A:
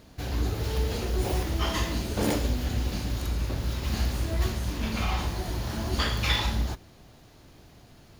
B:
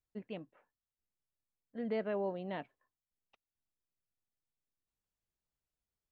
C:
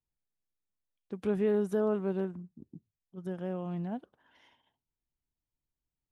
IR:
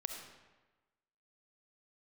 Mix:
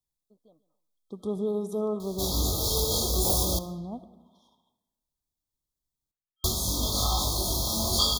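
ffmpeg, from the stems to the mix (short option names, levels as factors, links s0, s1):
-filter_complex "[0:a]highshelf=f=3500:g=11.5,flanger=delay=20:depth=2.4:speed=0.59,adelay=2000,volume=1,asplit=3[s0][s1][s2];[s0]atrim=end=3.59,asetpts=PTS-STARTPTS,afade=t=out:st=3.586:d=0.004:c=hsin[s3];[s1]atrim=start=3.59:end=6.44,asetpts=PTS-STARTPTS,volume=0[s4];[s2]atrim=start=6.44,asetpts=PTS-STARTPTS,afade=t=in:d=0.004:c=hsin[s5];[s3][s4][s5]concat=n=3:v=0:a=1,asplit=2[s6][s7];[s7]volume=0.376[s8];[1:a]acompressor=threshold=0.0112:ratio=6,adelay=150,volume=0.126,asplit=2[s9][s10];[s10]volume=0.168[s11];[2:a]volume=0.596,asplit=2[s12][s13];[s13]volume=0.631[s14];[s6][s9]amix=inputs=2:normalize=0,equalizer=f=610:w=1.5:g=5.5,alimiter=limit=0.112:level=0:latency=1:release=324,volume=1[s15];[3:a]atrim=start_sample=2205[s16];[s8][s14]amix=inputs=2:normalize=0[s17];[s17][s16]afir=irnorm=-1:irlink=0[s18];[s11]aecho=0:1:142|284|426|568:1|0.26|0.0676|0.0176[s19];[s12][s15][s18][s19]amix=inputs=4:normalize=0,afftfilt=real='re*(1-between(b*sr/4096,1300,3200))':imag='im*(1-between(b*sr/4096,1300,3200))':win_size=4096:overlap=0.75,highshelf=f=2400:g=7.5"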